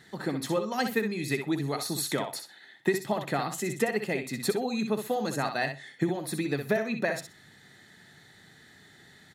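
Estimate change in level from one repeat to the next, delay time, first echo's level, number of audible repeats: −15.5 dB, 63 ms, −7.5 dB, 2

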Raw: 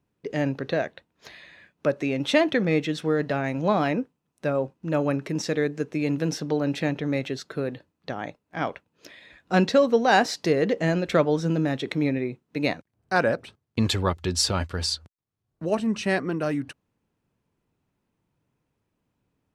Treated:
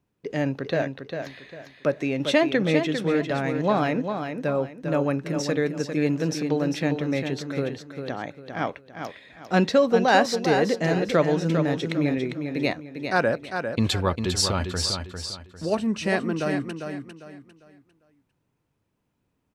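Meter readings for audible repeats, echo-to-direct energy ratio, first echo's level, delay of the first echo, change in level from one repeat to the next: 3, −6.5 dB, −7.0 dB, 400 ms, −10.0 dB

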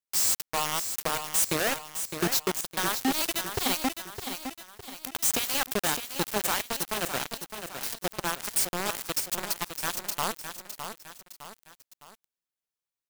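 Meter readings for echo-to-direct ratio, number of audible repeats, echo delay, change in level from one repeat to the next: −7.5 dB, 3, 610 ms, −7.0 dB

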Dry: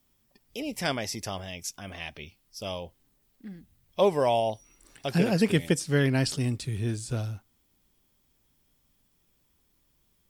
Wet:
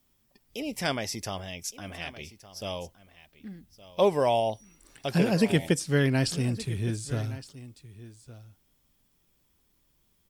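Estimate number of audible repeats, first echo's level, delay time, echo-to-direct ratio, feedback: 1, −17.0 dB, 1,166 ms, −17.0 dB, repeats not evenly spaced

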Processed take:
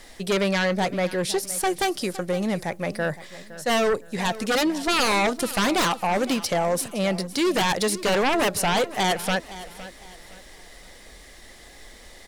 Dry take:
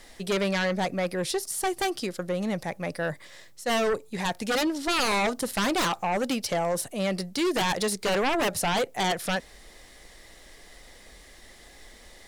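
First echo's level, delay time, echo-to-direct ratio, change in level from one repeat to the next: −16.0 dB, 513 ms, −15.5 dB, −9.5 dB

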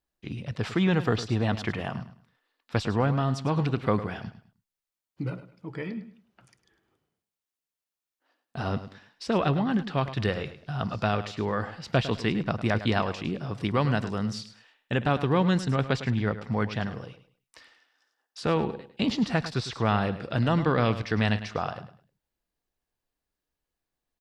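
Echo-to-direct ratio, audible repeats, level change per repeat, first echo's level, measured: −12.5 dB, 2, −11.5 dB, −13.0 dB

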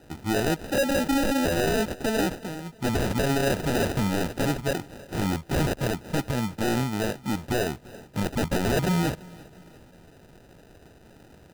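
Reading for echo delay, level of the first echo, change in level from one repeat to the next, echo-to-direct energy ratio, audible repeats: 340 ms, −22.5 dB, −7.0 dB, −21.5 dB, 2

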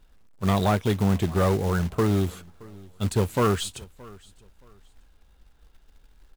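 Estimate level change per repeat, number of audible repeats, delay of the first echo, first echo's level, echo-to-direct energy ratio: −11.5 dB, 2, 622 ms, −23.0 dB, −22.5 dB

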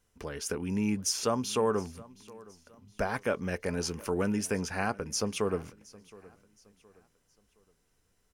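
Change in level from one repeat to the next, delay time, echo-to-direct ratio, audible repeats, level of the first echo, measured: −8.5 dB, 718 ms, −21.5 dB, 2, −22.0 dB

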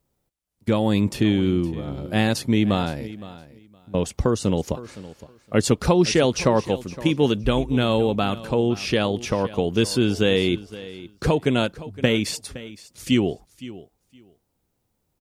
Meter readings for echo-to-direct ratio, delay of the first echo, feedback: −17.0 dB, 515 ms, 17%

